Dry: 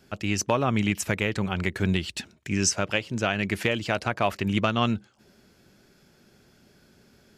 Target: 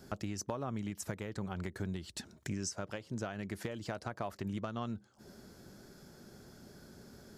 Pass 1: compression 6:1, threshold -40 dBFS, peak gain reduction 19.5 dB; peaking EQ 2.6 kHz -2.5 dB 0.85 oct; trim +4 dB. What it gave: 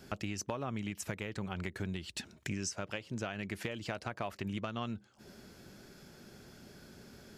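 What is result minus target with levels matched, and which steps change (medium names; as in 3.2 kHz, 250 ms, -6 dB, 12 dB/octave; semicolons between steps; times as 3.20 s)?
2 kHz band +4.0 dB
change: peaking EQ 2.6 kHz -12 dB 0.85 oct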